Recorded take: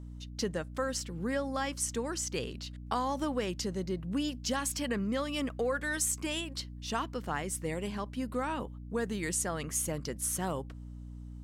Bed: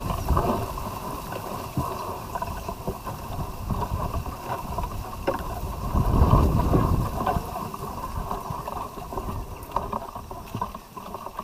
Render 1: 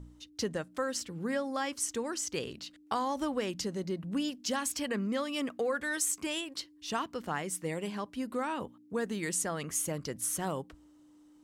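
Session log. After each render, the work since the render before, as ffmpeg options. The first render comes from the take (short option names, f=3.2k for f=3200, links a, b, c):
-af "bandreject=f=60:t=h:w=4,bandreject=f=120:t=h:w=4,bandreject=f=180:t=h:w=4,bandreject=f=240:t=h:w=4"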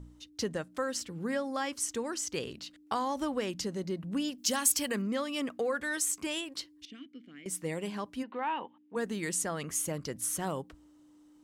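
-filter_complex "[0:a]asettb=1/sr,asplit=3[a][b][c];[a]atrim=end=4.384[d];[b]atrim=start=4.38:end=5.02,asetpts=PTS-STARTPTS,afade=t=in:d=0.004:c=qsin,afade=t=out:st=0.636:d=0.004:c=qsin,aemphasis=mode=production:type=50kf[e];[c]atrim=start=5.016[f];[d][e]acrossfade=d=0.004:c1=hsin:c2=qsin[g];[g][f]acrossfade=d=0.004:c1=qsin:c2=hsin,asettb=1/sr,asplit=3[h][i][j];[h]atrim=end=6.854[k];[i]atrim=start=6.85:end=7.46,asetpts=PTS-STARTPTS,afade=t=in:d=0.004:c=qsin,afade=t=out:st=0.606:d=0.004:c=qsin,asplit=3[l][m][n];[l]bandpass=f=270:t=q:w=8,volume=0dB[o];[m]bandpass=f=2.29k:t=q:w=8,volume=-6dB[p];[n]bandpass=f=3.01k:t=q:w=8,volume=-9dB[q];[o][p][q]amix=inputs=3:normalize=0[r];[j]atrim=start=7.456[s];[k][r]acrossfade=d=0.004:c1=hsin:c2=qsin[t];[t][s]acrossfade=d=0.004:c1=qsin:c2=hsin,asplit=3[u][v][w];[u]afade=t=out:st=8.22:d=0.02[x];[v]highpass=350,equalizer=f=420:t=q:w=4:g=-4,equalizer=f=600:t=q:w=4:g=-5,equalizer=f=880:t=q:w=4:g=8,equalizer=f=1.3k:t=q:w=4:g=-6,equalizer=f=1.8k:t=q:w=4:g=3,equalizer=f=2.9k:t=q:w=4:g=6,lowpass=f=3.2k:w=0.5412,lowpass=f=3.2k:w=1.3066,afade=t=in:st=8.22:d=0.02,afade=t=out:st=8.95:d=0.02[y];[w]afade=t=in:st=8.95:d=0.02[z];[x][y][z]amix=inputs=3:normalize=0"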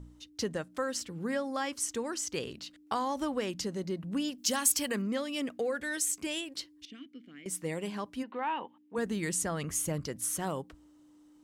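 -filter_complex "[0:a]asettb=1/sr,asplit=3[a][b][c];[a]atrim=end=5.184[d];[b]atrim=start=5.18:end=6.61,asetpts=PTS-STARTPTS,afade=t=in:d=0.004:c=qsin,afade=t=out:st=1.426:d=0.004:c=qsin,equalizer=f=1.1k:w=2.2:g=-7.5[e];[c]atrim=start=6.606[f];[d][e]acrossfade=d=0.004:c1=hsin:c2=qsin[g];[g][f]acrossfade=d=0.004:c1=qsin:c2=hsin,asettb=1/sr,asplit=3[h][i][j];[h]atrim=end=8.984[k];[i]atrim=start=8.98:end=10.06,asetpts=PTS-STARTPTS,afade=t=in:d=0.004:c=qsin,afade=t=out:st=1.076:d=0.004:c=qsin,equalizer=f=66:w=0.68:g=11.5[l];[j]atrim=start=10.056[m];[k][l]acrossfade=d=0.004:c1=hsin:c2=qsin[n];[n][m]acrossfade=d=0.004:c1=qsin:c2=hsin"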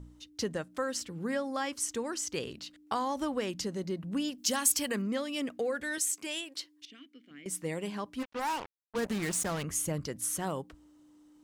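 -filter_complex "[0:a]asettb=1/sr,asplit=3[a][b][c];[a]atrim=end=5.984[d];[b]atrim=start=5.98:end=7.31,asetpts=PTS-STARTPTS,afade=t=in:d=0.004:c=qsin,afade=t=out:st=1.326:d=0.004:c=qsin,highpass=f=480:p=1[e];[c]atrim=start=7.306[f];[d][e]acrossfade=d=0.004:c1=hsin:c2=qsin[g];[g][f]acrossfade=d=0.004:c1=qsin:c2=hsin,asplit=3[h][i][j];[h]afade=t=out:st=8.18:d=0.02[k];[i]acrusher=bits=5:mix=0:aa=0.5,afade=t=in:st=8.18:d=0.02,afade=t=out:st=9.62:d=0.02[l];[j]afade=t=in:st=9.62:d=0.02[m];[k][l][m]amix=inputs=3:normalize=0"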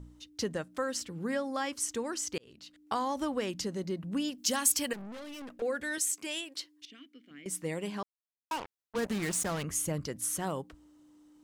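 -filter_complex "[0:a]asettb=1/sr,asplit=3[a][b][c];[a]atrim=end=4.934[d];[b]atrim=start=4.93:end=5.62,asetpts=PTS-STARTPTS,afade=t=in:d=0.004:c=qsin,afade=t=out:st=0.686:d=0.004:c=qsin,aeval=exprs='(tanh(126*val(0)+0.5)-tanh(0.5))/126':c=same[e];[c]atrim=start=5.616[f];[d][e]acrossfade=d=0.004:c1=hsin:c2=qsin[g];[g][f]acrossfade=d=0.004:c1=qsin:c2=hsin,asplit=4[h][i][j][k];[h]atrim=end=2.38,asetpts=PTS-STARTPTS,afade=t=out:st=2.376:d=0.004:c=hsin[l];[i]atrim=start=2.38:end=8.03,asetpts=PTS-STARTPTS,afade=t=in:d=0.55,afade=t=out:st=5.646:d=0.004:c=hsin[m];[j]atrim=start=8.03:end=8.51,asetpts=PTS-STARTPTS,volume=0[n];[k]atrim=start=8.51,asetpts=PTS-STARTPTS,afade=t=in:d=0.004:c=hsin[o];[l][m][n][o]concat=n=4:v=0:a=1"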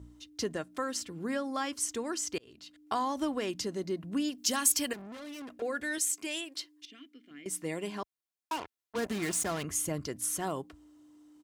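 -af "highpass=60,aecho=1:1:2.9:0.33"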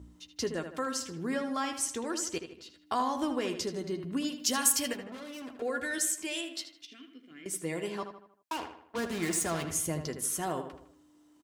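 -filter_complex "[0:a]asplit=2[a][b];[b]adelay=12,volume=-9.5dB[c];[a][c]amix=inputs=2:normalize=0,asplit=2[d][e];[e]adelay=78,lowpass=f=3.5k:p=1,volume=-8dB,asplit=2[f][g];[g]adelay=78,lowpass=f=3.5k:p=1,volume=0.47,asplit=2[h][i];[i]adelay=78,lowpass=f=3.5k:p=1,volume=0.47,asplit=2[j][k];[k]adelay=78,lowpass=f=3.5k:p=1,volume=0.47,asplit=2[l][m];[m]adelay=78,lowpass=f=3.5k:p=1,volume=0.47[n];[d][f][h][j][l][n]amix=inputs=6:normalize=0"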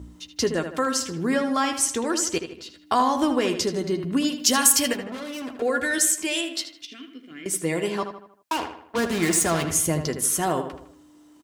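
-af "volume=9.5dB,alimiter=limit=-2dB:level=0:latency=1"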